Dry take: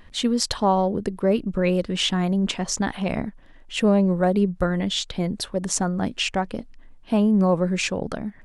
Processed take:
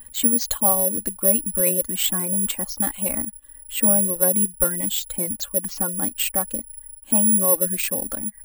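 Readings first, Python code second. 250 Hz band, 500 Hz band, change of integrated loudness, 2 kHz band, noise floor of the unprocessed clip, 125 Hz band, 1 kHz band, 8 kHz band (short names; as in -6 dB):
-6.0 dB, -4.0 dB, +3.5 dB, -4.5 dB, -47 dBFS, -8.5 dB, -6.0 dB, +12.5 dB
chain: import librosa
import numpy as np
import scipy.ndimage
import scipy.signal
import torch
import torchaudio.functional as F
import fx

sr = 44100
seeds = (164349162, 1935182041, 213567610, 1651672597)

y = x + 0.85 * np.pad(x, (int(3.6 * sr / 1000.0), 0))[:len(x)]
y = fx.dereverb_blind(y, sr, rt60_s=0.5)
y = (np.kron(scipy.signal.resample_poly(y, 1, 4), np.eye(4)[0]) * 4)[:len(y)]
y = F.gain(torch.from_numpy(y), -6.5).numpy()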